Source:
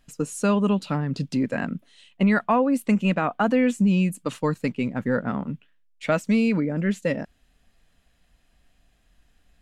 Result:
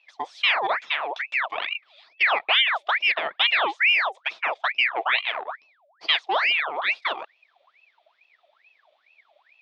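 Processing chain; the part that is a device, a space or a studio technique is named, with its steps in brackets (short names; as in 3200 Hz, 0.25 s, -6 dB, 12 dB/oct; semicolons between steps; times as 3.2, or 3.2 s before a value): 4.64–5.16 tone controls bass +8 dB, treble -9 dB; voice changer toy (ring modulator with a swept carrier 1600 Hz, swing 65%, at 2.3 Hz; speaker cabinet 590–4400 Hz, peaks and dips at 660 Hz +7 dB, 1500 Hz -4 dB, 2400 Hz +3 dB, 3500 Hz +9 dB)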